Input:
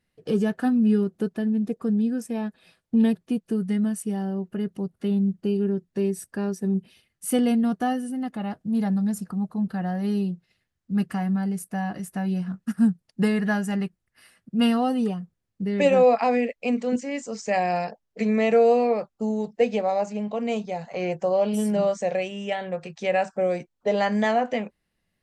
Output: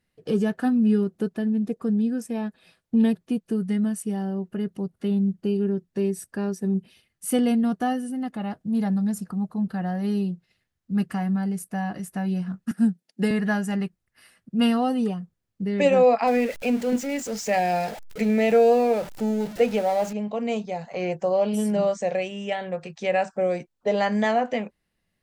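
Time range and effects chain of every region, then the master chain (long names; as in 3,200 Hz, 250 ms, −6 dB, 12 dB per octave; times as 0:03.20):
0:12.71–0:13.31: high-pass filter 190 Hz 24 dB per octave + parametric band 1,100 Hz −9.5 dB 0.45 octaves
0:16.27–0:20.13: converter with a step at zero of −33 dBFS + notch filter 1,100 Hz, Q 6.4
whole clip: no processing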